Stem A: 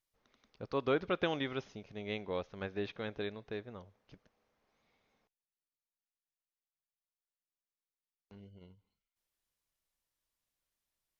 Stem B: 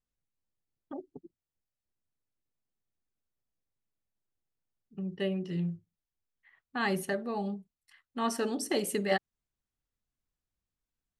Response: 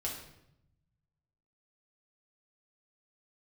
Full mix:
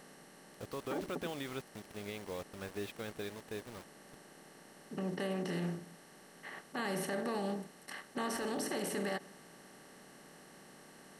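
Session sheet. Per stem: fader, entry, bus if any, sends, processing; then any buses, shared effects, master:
−2.0 dB, 0.00 s, no send, brickwall limiter −29 dBFS, peak gain reduction 9 dB; bit reduction 8 bits
−6.5 dB, 0.00 s, send −23.5 dB, compressor on every frequency bin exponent 0.4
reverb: on, RT60 0.80 s, pre-delay 5 ms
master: brickwall limiter −28 dBFS, peak gain reduction 9 dB

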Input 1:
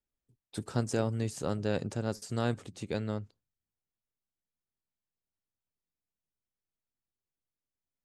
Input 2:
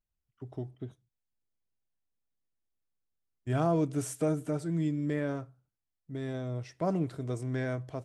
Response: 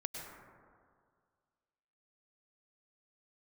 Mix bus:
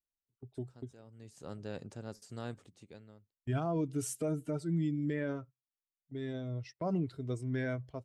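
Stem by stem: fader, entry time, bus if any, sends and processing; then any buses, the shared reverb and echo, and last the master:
−11.0 dB, 0.00 s, no send, automatic ducking −19 dB, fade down 0.90 s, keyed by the second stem
+1.5 dB, 0.00 s, no send, spectral dynamics exaggerated over time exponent 1.5; noise gate −51 dBFS, range −15 dB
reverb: not used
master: brickwall limiter −25 dBFS, peak gain reduction 7.5 dB

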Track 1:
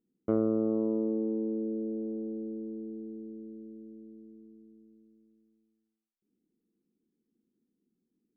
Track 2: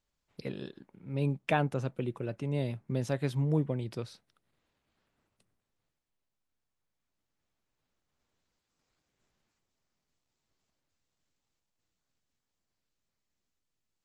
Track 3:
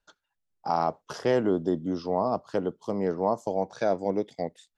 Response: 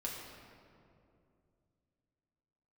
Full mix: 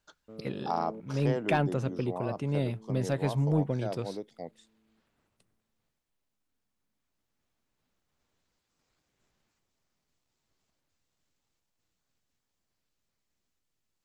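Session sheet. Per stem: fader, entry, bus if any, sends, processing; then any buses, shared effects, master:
−10.5 dB, 0.00 s, no send, shaped tremolo saw up 1 Hz, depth 95%; notch comb filter 350 Hz
+2.5 dB, 0.00 s, no send, soft clipping −17 dBFS, distortion −22 dB
0.0 dB, 0.00 s, no send, automatic ducking −11 dB, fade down 1.75 s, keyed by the second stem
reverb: not used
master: hard clipping −16.5 dBFS, distortion −40 dB

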